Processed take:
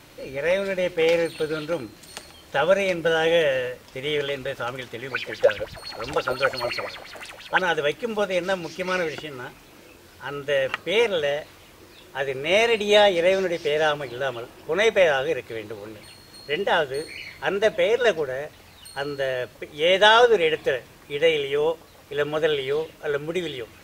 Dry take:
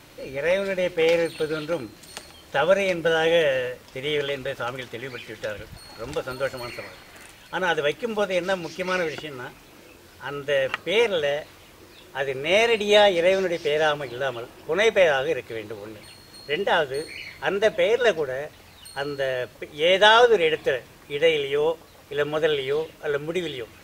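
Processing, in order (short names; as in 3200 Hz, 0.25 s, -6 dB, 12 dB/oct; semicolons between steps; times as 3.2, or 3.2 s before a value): 5.11–7.62 LFO bell 5.8 Hz 520–5000 Hz +17 dB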